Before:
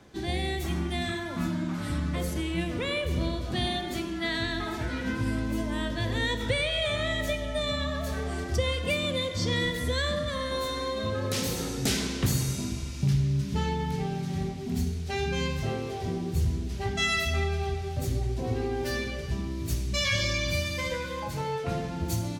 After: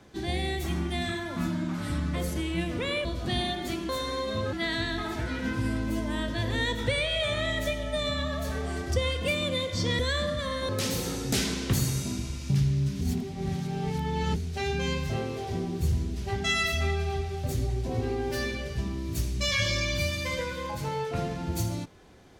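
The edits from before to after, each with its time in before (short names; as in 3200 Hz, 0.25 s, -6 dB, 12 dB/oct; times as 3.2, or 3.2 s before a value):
3.05–3.31 cut
9.61–9.88 cut
10.58–11.22 move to 4.15
13.54–14.89 reverse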